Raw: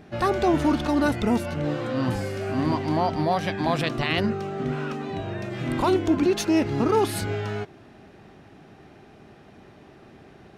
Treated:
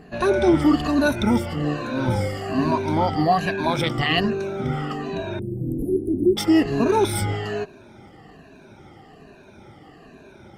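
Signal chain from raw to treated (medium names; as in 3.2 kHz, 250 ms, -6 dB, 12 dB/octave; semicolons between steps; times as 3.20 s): drifting ripple filter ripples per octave 1.5, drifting -1.2 Hz, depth 17 dB; 5.39–6.37 s: Chebyshev band-stop 450–9600 Hz, order 5; Opus 20 kbps 48 kHz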